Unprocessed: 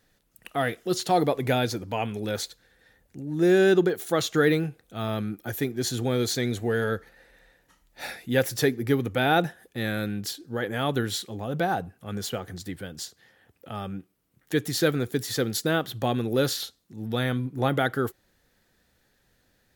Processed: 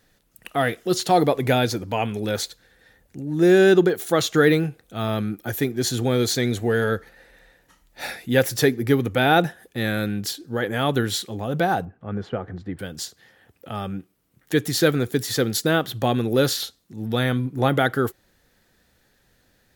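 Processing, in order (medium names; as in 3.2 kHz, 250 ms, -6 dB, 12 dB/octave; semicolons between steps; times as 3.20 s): 11.85–12.79 s: low-pass 1.5 kHz 12 dB/octave; trim +4.5 dB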